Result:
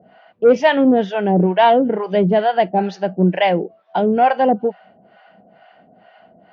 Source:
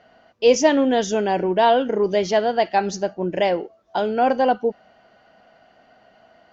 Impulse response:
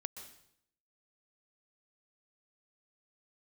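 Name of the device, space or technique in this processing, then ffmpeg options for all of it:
guitar amplifier with harmonic tremolo: -filter_complex "[0:a]acrossover=split=610[link_01][link_02];[link_01]aeval=exprs='val(0)*(1-1/2+1/2*cos(2*PI*2.2*n/s))':channel_layout=same[link_03];[link_02]aeval=exprs='val(0)*(1-1/2-1/2*cos(2*PI*2.2*n/s))':channel_layout=same[link_04];[link_03][link_04]amix=inputs=2:normalize=0,asoftclip=type=tanh:threshold=-13dB,highpass=100,equalizer=frequency=180:width_type=q:width=4:gain=10,equalizer=frequency=750:width_type=q:width=4:gain=3,equalizer=frequency=1200:width_type=q:width=4:gain=-3,lowpass=frequency=3400:width=0.5412,lowpass=frequency=3400:width=1.3066,asettb=1/sr,asplit=3[link_05][link_06][link_07];[link_05]atrim=end=0.844[link_08];[link_06]atrim=start=0.84:end=1.48,asetpts=PTS-STARTPTS,afade=type=in:duration=0.004:curve=qsin,afade=type=out:start_time=0.636:duration=0.004:curve=qsin,highshelf=frequency=4100:gain=-9[link_09];[link_07]atrim=start=1.476[link_10];[link_08][link_09]acrossfade=duration=0.004:curve1=hsin:curve2=qsin[link_11];[link_11][link_10]acrossfade=duration=0.004:curve1=qsin:curve2=hsin,volume=8.5dB"

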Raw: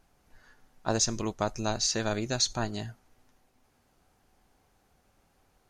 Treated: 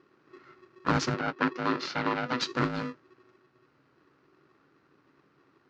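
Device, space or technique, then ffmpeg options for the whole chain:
ring modulator pedal into a guitar cabinet: -filter_complex "[0:a]aeval=exprs='val(0)*sgn(sin(2*PI*370*n/s))':channel_layout=same,highpass=81,equalizer=frequency=140:width_type=q:width=4:gain=10,equalizer=frequency=280:width_type=q:width=4:gain=9,equalizer=frequency=680:width_type=q:width=4:gain=-4,equalizer=frequency=1400:width_type=q:width=4:gain=9,equalizer=frequency=3400:width_type=q:width=4:gain=-6,lowpass=frequency=4500:width=0.5412,lowpass=frequency=4500:width=1.3066,asettb=1/sr,asplit=3[link_01][link_02][link_03];[link_01]atrim=end=1.144[link_04];[link_02]atrim=start=1.14:end=2.41,asetpts=PTS-STARTPTS,afade=type=in:duration=0.004:curve=qsin,afade=type=out:start_time=1.266:duration=0.004:curve=qsin,acrossover=split=210 5200:gain=0.224 1 0.126[link_05][link_06][link_07];[link_05][link_06][link_07]amix=inputs=3:normalize=0[link_08];[link_03]atrim=start=2.406[link_09];[link_04][link_08]acrossfade=duration=0.004:curve1=hsin:curve2=qsin[link_10];[link_10][link_09]acrossfade=duration=0.004:curve1=qsin:curve2=hsin"

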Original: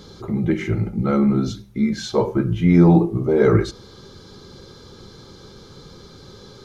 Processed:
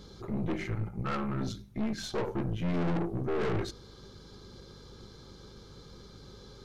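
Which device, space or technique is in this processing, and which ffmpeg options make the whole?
valve amplifier with mains hum: -filter_complex "[0:a]asettb=1/sr,asplit=3[link_01][link_02][link_03];[link_01]atrim=end=0.674[link_04];[link_02]atrim=start=0.67:end=1.41,asetpts=PTS-STARTPTS,afade=type=in:duration=0.004:curve=qsin,afade=type=out:start_time=0.736:duration=0.004:curve=qsin,equalizer=frequency=125:width_type=o:width=1:gain=3,equalizer=frequency=250:width_type=o:width=1:gain=-12,equalizer=frequency=500:width_type=o:width=1:gain=-4,equalizer=frequency=1000:width_type=o:width=1:gain=9,equalizer=frequency=4000:width_type=o:width=1:gain=-6[link_05];[link_03]atrim=start=1.406[link_06];[link_04][link_05]acrossfade=duration=0.004:curve1=hsin:curve2=qsin[link_07];[link_07][link_06]acrossfade=duration=0.004:curve1=qsin:curve2=hsin,aeval=exprs='(tanh(14.1*val(0)+0.65)-tanh(0.65))/14.1':channel_layout=same,aeval=exprs='val(0)+0.00355*(sin(2*PI*50*n/s)+sin(2*PI*2*50*n/s)/2+sin(2*PI*3*50*n/s)/3+sin(2*PI*4*50*n/s)/4+sin(2*PI*5*50*n/s)/5)':channel_layout=same,volume=-5.5dB"

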